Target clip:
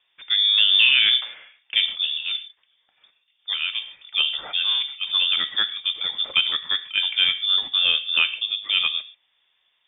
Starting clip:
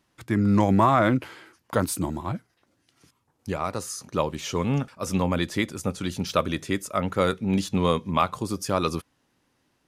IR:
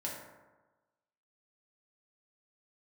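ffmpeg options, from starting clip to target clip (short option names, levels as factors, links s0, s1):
-filter_complex "[0:a]asplit=2[s0][s1];[1:a]atrim=start_sample=2205,afade=t=out:st=0.2:d=0.01,atrim=end_sample=9261,lowpass=3400[s2];[s1][s2]afir=irnorm=-1:irlink=0,volume=0.447[s3];[s0][s3]amix=inputs=2:normalize=0,lowpass=f=3100:t=q:w=0.5098,lowpass=f=3100:t=q:w=0.6013,lowpass=f=3100:t=q:w=0.9,lowpass=f=3100:t=q:w=2.563,afreqshift=-3700"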